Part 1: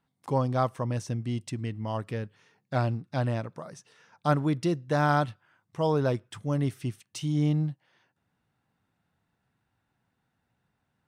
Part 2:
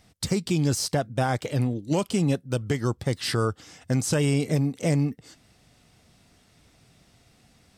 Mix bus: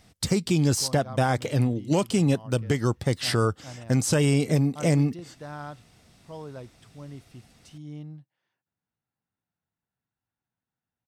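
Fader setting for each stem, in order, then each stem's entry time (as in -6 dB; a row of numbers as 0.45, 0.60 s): -14.5, +1.5 dB; 0.50, 0.00 s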